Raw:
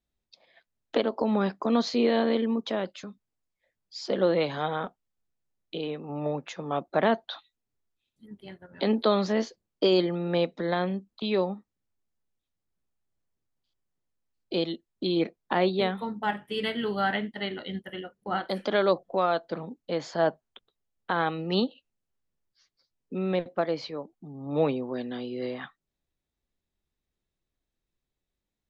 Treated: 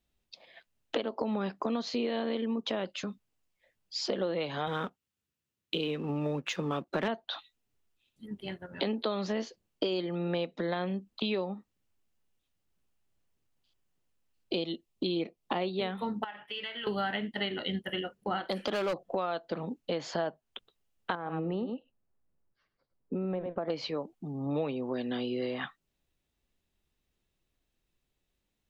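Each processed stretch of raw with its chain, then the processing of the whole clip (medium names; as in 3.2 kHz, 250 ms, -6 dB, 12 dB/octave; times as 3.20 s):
4.67–7.08 s: high-pass 64 Hz 24 dB/octave + peaking EQ 710 Hz -9 dB 0.68 oct + waveshaping leveller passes 1
14.55–15.62 s: peaking EQ 1.6 kHz -10 dB 0.4 oct + band-stop 940 Hz, Q 18
16.24–16.87 s: three-band isolator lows -17 dB, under 600 Hz, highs -22 dB, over 4.6 kHz + compression 5:1, threshold -42 dBFS
18.52–19.00 s: hard clipper -22 dBFS + tape noise reduction on one side only encoder only
21.15–23.70 s: delay 102 ms -13 dB + compression 3:1, threshold -31 dBFS + low-pass 1.2 kHz
whole clip: peaking EQ 2.8 kHz +5.5 dB 0.33 oct; compression 6:1, threshold -34 dBFS; trim +4.5 dB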